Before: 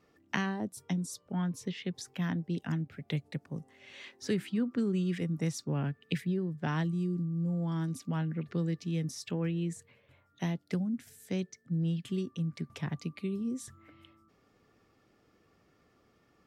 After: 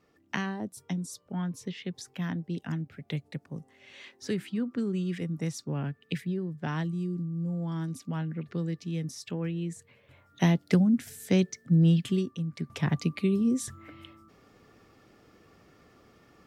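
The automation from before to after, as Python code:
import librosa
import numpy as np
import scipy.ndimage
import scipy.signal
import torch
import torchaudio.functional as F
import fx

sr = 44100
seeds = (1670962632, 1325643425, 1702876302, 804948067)

y = fx.gain(x, sr, db=fx.line((9.74, 0.0), (10.44, 10.0), (11.98, 10.0), (12.46, 0.0), (12.9, 9.0)))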